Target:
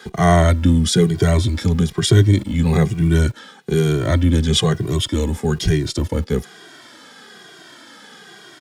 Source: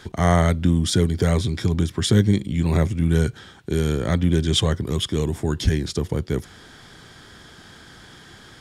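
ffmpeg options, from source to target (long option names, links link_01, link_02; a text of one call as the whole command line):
ffmpeg -i in.wav -filter_complex "[0:a]acrossover=split=190|2700[link_01][link_02][link_03];[link_01]aeval=exprs='val(0)*gte(abs(val(0)),0.0106)':channel_layout=same[link_04];[link_04][link_02][link_03]amix=inputs=3:normalize=0,asplit=2[link_05][link_06];[link_06]adelay=2,afreqshift=-1.1[link_07];[link_05][link_07]amix=inputs=2:normalize=1,volume=7dB" out.wav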